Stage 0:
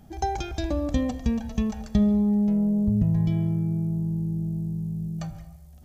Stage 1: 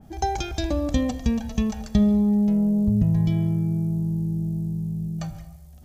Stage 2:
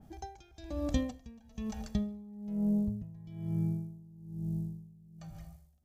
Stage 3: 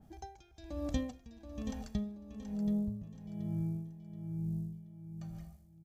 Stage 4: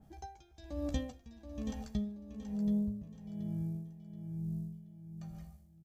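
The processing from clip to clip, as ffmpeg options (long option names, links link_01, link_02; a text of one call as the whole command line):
ffmpeg -i in.wav -af "adynamicequalizer=threshold=0.00447:dfrequency=2400:dqfactor=0.7:tfrequency=2400:tqfactor=0.7:attack=5:release=100:ratio=0.375:range=2:mode=boostabove:tftype=highshelf,volume=2dB" out.wav
ffmpeg -i in.wav -af "aeval=exprs='val(0)*pow(10,-22*(0.5-0.5*cos(2*PI*1.1*n/s))/20)':channel_layout=same,volume=-7dB" out.wav
ffmpeg -i in.wav -af "aecho=1:1:728|1456|2184|2912:0.355|0.114|0.0363|0.0116,volume=-3.5dB" out.wav
ffmpeg -i in.wav -filter_complex "[0:a]asplit=2[link_01][link_02];[link_02]adelay=14,volume=-7.5dB[link_03];[link_01][link_03]amix=inputs=2:normalize=0,volume=-1.5dB" out.wav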